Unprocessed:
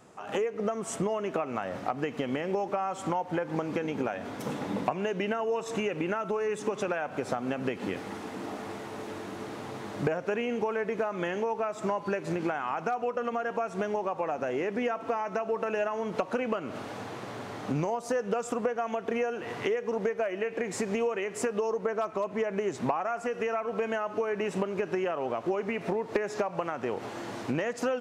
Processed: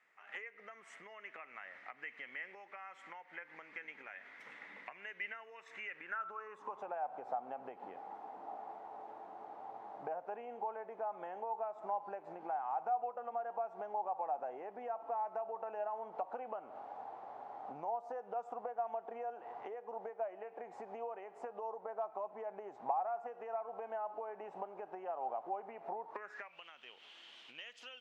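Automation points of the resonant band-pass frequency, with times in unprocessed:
resonant band-pass, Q 6.2
0:05.89 2,000 Hz
0:06.92 790 Hz
0:26.05 790 Hz
0:26.62 3,100 Hz

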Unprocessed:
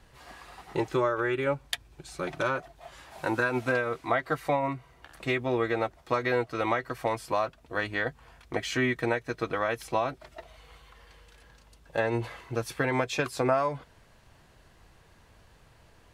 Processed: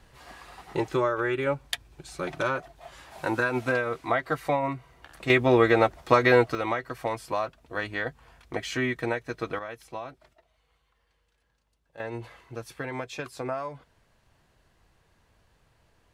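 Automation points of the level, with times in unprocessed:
+1 dB
from 0:05.30 +8 dB
from 0:06.55 −1 dB
from 0:09.59 −9.5 dB
from 0:10.33 −17.5 dB
from 0:12.00 −7 dB

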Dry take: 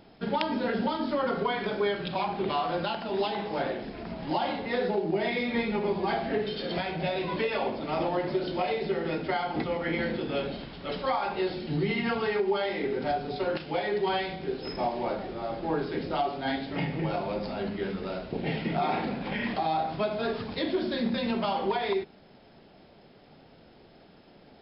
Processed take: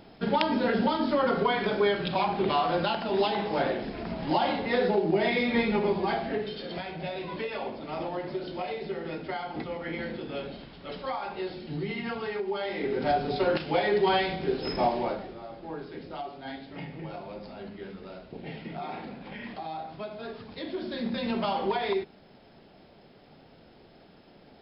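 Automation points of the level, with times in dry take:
0:05.77 +3 dB
0:06.71 −5 dB
0:12.48 −5 dB
0:13.17 +4 dB
0:14.92 +4 dB
0:15.48 −9 dB
0:20.43 −9 dB
0:21.39 0 dB

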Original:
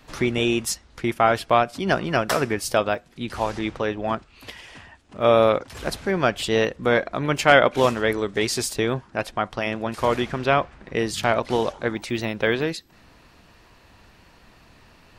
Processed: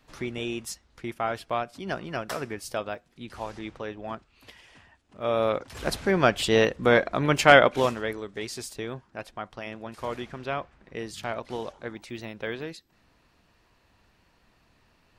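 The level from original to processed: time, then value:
0:05.25 −10.5 dB
0:05.95 0 dB
0:07.53 0 dB
0:08.24 −11.5 dB

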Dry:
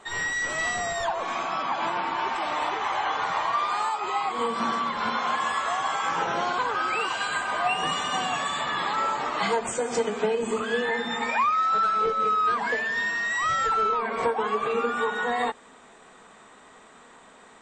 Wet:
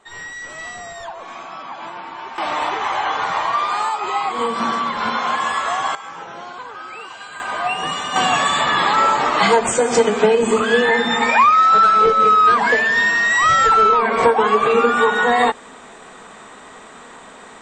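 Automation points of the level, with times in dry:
−4.5 dB
from 0:02.38 +6 dB
from 0:05.95 −7 dB
from 0:07.40 +3.5 dB
from 0:08.16 +11 dB

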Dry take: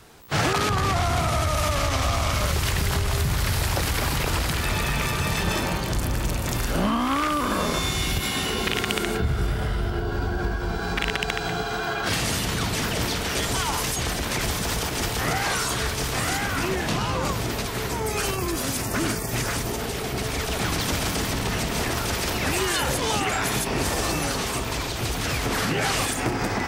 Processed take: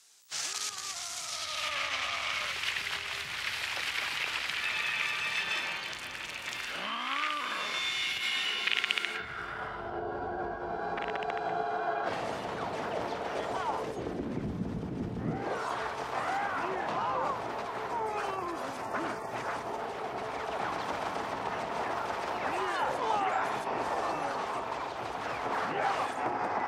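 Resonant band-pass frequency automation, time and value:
resonant band-pass, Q 1.6
0:01.21 6,700 Hz
0:01.74 2,500 Hz
0:09.05 2,500 Hz
0:10.01 690 Hz
0:13.64 690 Hz
0:14.47 210 Hz
0:15.28 210 Hz
0:15.68 860 Hz

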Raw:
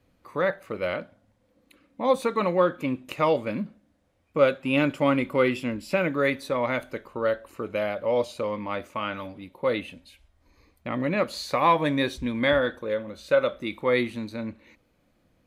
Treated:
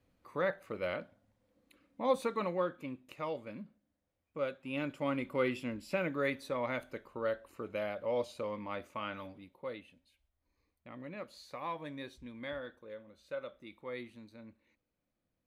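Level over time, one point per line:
0:02.19 −8 dB
0:03.02 −16 dB
0:04.56 −16 dB
0:05.46 −9.5 dB
0:09.31 −9.5 dB
0:09.83 −19.5 dB

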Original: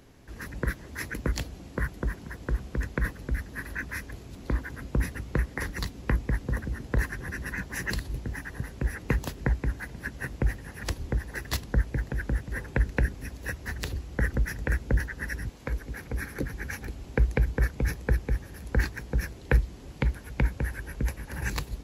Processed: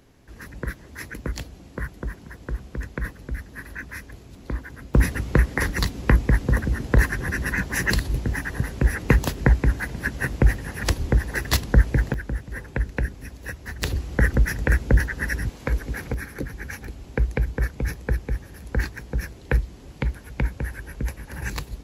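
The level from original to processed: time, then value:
−1 dB
from 0:04.94 +9 dB
from 0:12.14 0 dB
from 0:13.82 +7.5 dB
from 0:16.14 +1 dB

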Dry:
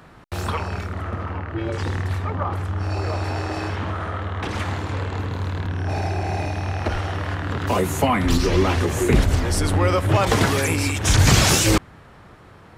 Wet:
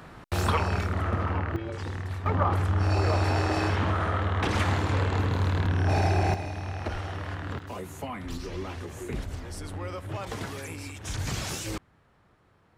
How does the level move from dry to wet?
+0.5 dB
from 0:01.56 −9 dB
from 0:02.26 +0.5 dB
from 0:06.34 −8.5 dB
from 0:07.59 −17 dB

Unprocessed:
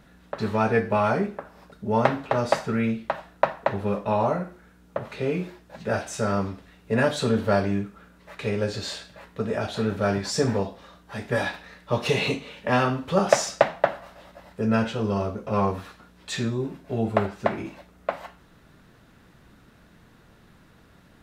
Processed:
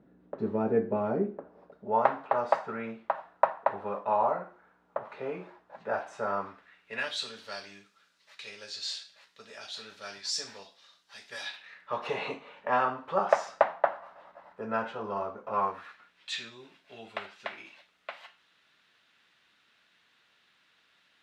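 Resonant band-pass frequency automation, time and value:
resonant band-pass, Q 1.5
0:01.40 330 Hz
0:02.05 940 Hz
0:06.31 940 Hz
0:07.33 4,700 Hz
0:11.43 4,700 Hz
0:12.06 1,000 Hz
0:15.49 1,000 Hz
0:16.30 3,100 Hz

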